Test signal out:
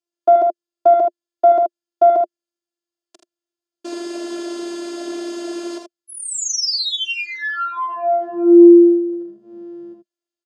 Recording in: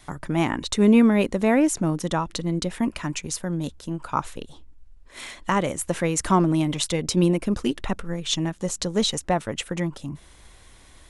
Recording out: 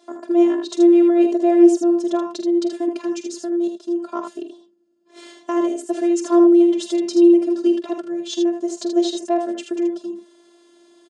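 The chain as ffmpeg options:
-filter_complex "[0:a]equalizer=f=450:t=o:w=1.2:g=5.5,aeval=exprs='0.562*(cos(1*acos(clip(val(0)/0.562,-1,1)))-cos(1*PI/2))+0.0562*(cos(2*acos(clip(val(0)/0.562,-1,1)))-cos(2*PI/2))+0.0126*(cos(5*acos(clip(val(0)/0.562,-1,1)))-cos(5*PI/2))':c=same,afftfilt=real='hypot(re,im)*cos(PI*b)':imag='0':win_size=512:overlap=0.75,highpass=f=200:w=0.5412,highpass=f=200:w=1.3066,equalizer=f=210:t=q:w=4:g=7,equalizer=f=350:t=q:w=4:g=9,equalizer=f=620:t=q:w=4:g=9,equalizer=f=2.1k:t=q:w=4:g=-9,equalizer=f=5k:t=q:w=4:g=3,lowpass=f=8k:w=0.5412,lowpass=f=8k:w=1.3066,asplit=2[a][b];[b]aecho=0:1:46|79:0.266|0.473[c];[a][c]amix=inputs=2:normalize=0,volume=-3dB"

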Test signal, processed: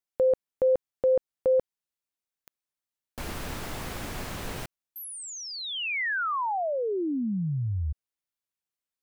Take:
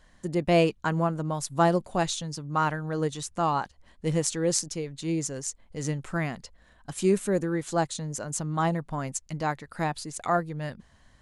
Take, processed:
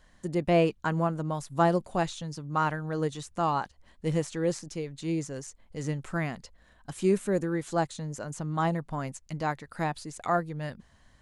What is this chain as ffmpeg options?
-filter_complex "[0:a]acrossover=split=2700[a][b];[b]acompressor=threshold=-39dB:ratio=4:attack=1:release=60[c];[a][c]amix=inputs=2:normalize=0,volume=-1.5dB"

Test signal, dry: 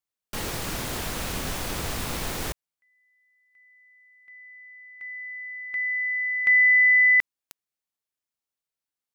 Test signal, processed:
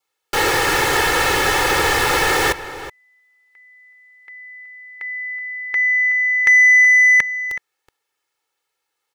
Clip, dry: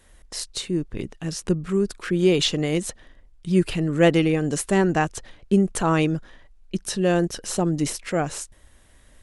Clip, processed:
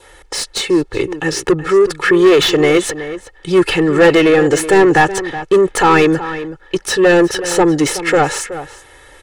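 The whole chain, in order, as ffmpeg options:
-filter_complex "[0:a]aecho=1:1:2.3:0.98,asplit=2[a][b];[b]highpass=f=720:p=1,volume=23dB,asoftclip=type=tanh:threshold=-3dB[c];[a][c]amix=inputs=2:normalize=0,lowpass=f=1.5k:p=1,volume=-6dB,highshelf=f=5.4k:g=4.5,asplit=2[d][e];[e]adelay=373.2,volume=-13dB,highshelf=f=4k:g=-8.4[f];[d][f]amix=inputs=2:normalize=0,adynamicequalizer=threshold=0.0178:dfrequency=1800:dqfactor=5.3:tfrequency=1800:tqfactor=5.3:attack=5:release=100:ratio=0.375:range=3:mode=boostabove:tftype=bell,volume=2dB"

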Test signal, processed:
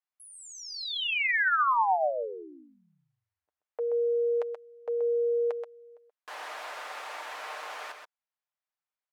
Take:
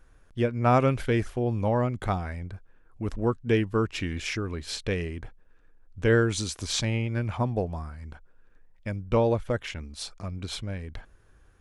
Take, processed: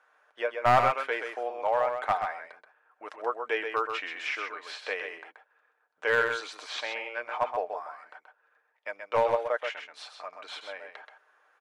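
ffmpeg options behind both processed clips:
-filter_complex "[0:a]aemphasis=mode=reproduction:type=50fm,acrossover=split=4400[a][b];[b]acompressor=threshold=-48dB:ratio=4:attack=1:release=60[c];[a][c]amix=inputs=2:normalize=0,highpass=f=640:w=0.5412,highpass=f=640:w=1.3066,aecho=1:1:6.6:0.35,acrossover=split=2500[d][e];[d]acontrast=79[f];[e]aeval=exprs='0.0531*(cos(1*acos(clip(val(0)/0.0531,-1,1)))-cos(1*PI/2))+0.000335*(cos(8*acos(clip(val(0)/0.0531,-1,1)))-cos(8*PI/2))':c=same[g];[f][g]amix=inputs=2:normalize=0,aeval=exprs='clip(val(0),-1,0.158)':c=same,asplit=2[h][i];[i]aecho=0:1:129:0.473[j];[h][j]amix=inputs=2:normalize=0,volume=-2.5dB"

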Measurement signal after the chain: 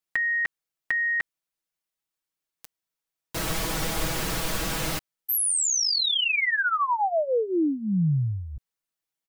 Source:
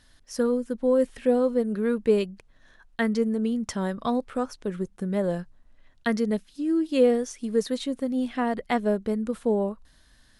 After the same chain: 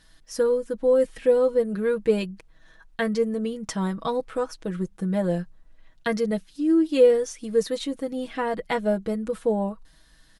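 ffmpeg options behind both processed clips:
-af "aecho=1:1:6.2:0.7"

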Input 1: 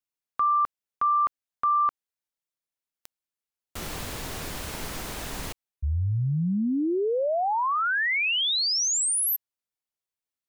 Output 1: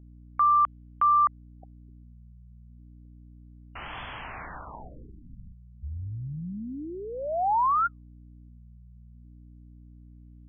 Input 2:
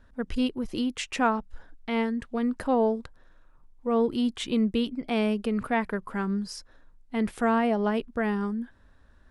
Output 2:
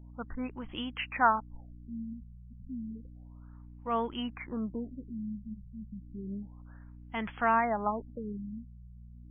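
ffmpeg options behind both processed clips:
-af "lowshelf=f=620:t=q:w=1.5:g=-9.5,aeval=exprs='val(0)+0.00398*(sin(2*PI*60*n/s)+sin(2*PI*2*60*n/s)/2+sin(2*PI*3*60*n/s)/3+sin(2*PI*4*60*n/s)/4+sin(2*PI*5*60*n/s)/5)':c=same,afftfilt=real='re*lt(b*sr/1024,210*pow(3500/210,0.5+0.5*sin(2*PI*0.31*pts/sr)))':imag='im*lt(b*sr/1024,210*pow(3500/210,0.5+0.5*sin(2*PI*0.31*pts/sr)))':win_size=1024:overlap=0.75"

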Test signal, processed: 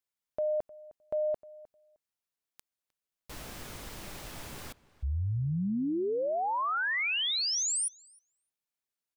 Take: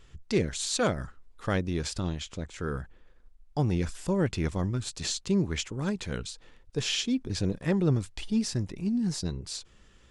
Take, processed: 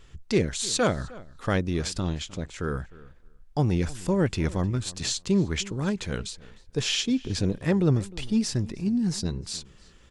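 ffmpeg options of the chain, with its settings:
-filter_complex "[0:a]asplit=2[a][b];[b]adelay=308,lowpass=f=3.4k:p=1,volume=-20dB,asplit=2[c][d];[d]adelay=308,lowpass=f=3.4k:p=1,volume=0.16[e];[a][c][e]amix=inputs=3:normalize=0,volume=3dB"

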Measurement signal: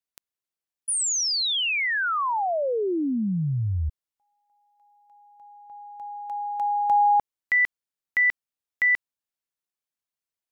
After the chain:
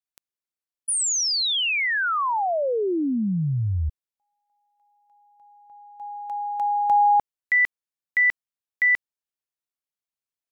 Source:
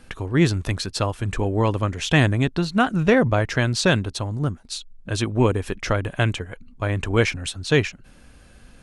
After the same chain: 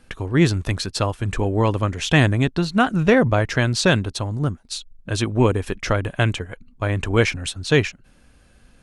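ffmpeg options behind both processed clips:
-af "agate=range=-6dB:threshold=-39dB:ratio=3:release=43:detection=peak,volume=1.5dB"

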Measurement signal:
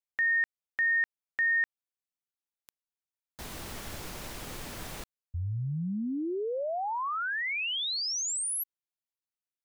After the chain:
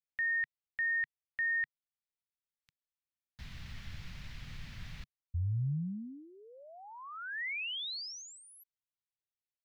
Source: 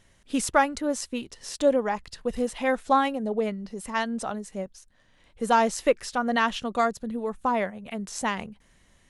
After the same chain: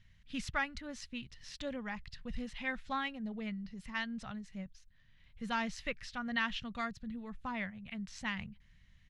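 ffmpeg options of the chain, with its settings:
-af "firequalizer=gain_entry='entry(140,0);entry(350,-24);entry(1900,-5);entry(4300,-8);entry(8700,-25)':delay=0.05:min_phase=1"

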